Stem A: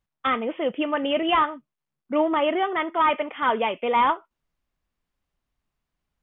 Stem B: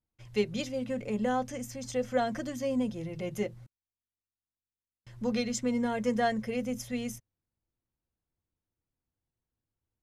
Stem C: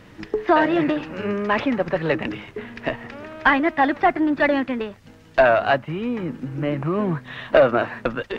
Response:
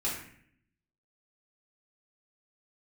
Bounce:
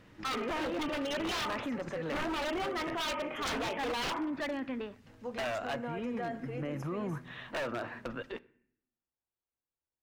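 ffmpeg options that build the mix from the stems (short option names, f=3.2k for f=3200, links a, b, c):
-filter_complex "[0:a]volume=-5dB,asplit=2[a][b];[b]volume=-11dB[c];[1:a]acrossover=split=380 2100:gain=0.2 1 0.2[d][e][f];[d][e][f]amix=inputs=3:normalize=0,volume=-4.5dB,asplit=2[g][h];[h]volume=-15.5dB[i];[2:a]volume=-11.5dB,asplit=2[j][k];[k]volume=-23dB[l];[3:a]atrim=start_sample=2205[m];[c][i][l]amix=inputs=3:normalize=0[n];[n][m]afir=irnorm=-1:irlink=0[o];[a][g][j][o]amix=inputs=4:normalize=0,aeval=exprs='0.0631*(abs(mod(val(0)/0.0631+3,4)-2)-1)':c=same,alimiter=level_in=5dB:limit=-24dB:level=0:latency=1:release=23,volume=-5dB"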